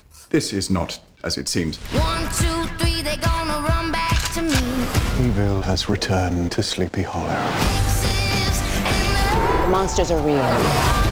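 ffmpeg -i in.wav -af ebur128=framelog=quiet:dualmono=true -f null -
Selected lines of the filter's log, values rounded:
Integrated loudness:
  I:         -17.9 LUFS
  Threshold: -27.9 LUFS
Loudness range:
  LRA:         3.1 LU
  Threshold: -38.0 LUFS
  LRA low:   -19.5 LUFS
  LRA high:  -16.4 LUFS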